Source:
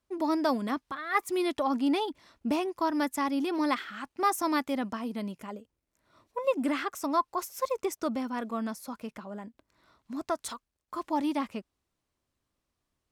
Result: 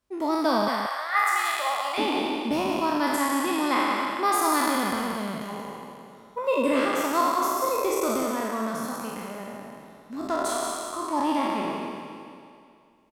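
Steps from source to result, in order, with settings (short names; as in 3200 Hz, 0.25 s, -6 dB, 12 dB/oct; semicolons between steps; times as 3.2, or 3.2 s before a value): spectral trails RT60 2.33 s; 0.68–1.98 HPF 690 Hz 24 dB/oct; echo 0.181 s -6.5 dB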